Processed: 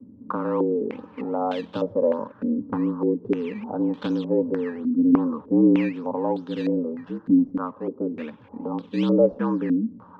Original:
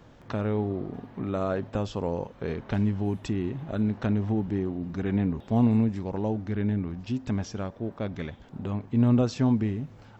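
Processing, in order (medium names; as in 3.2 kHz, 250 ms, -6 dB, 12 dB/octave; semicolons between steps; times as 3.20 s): static phaser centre 410 Hz, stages 8; frequency shift +73 Hz; in parallel at -5 dB: decimation with a swept rate 14×, swing 100% 2.6 Hz; on the sum: step-sequenced low-pass 3.3 Hz 270–3400 Hz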